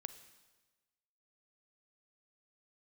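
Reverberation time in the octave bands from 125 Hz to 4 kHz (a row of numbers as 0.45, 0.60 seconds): 1.3, 1.3, 1.3, 1.3, 1.2, 1.2 seconds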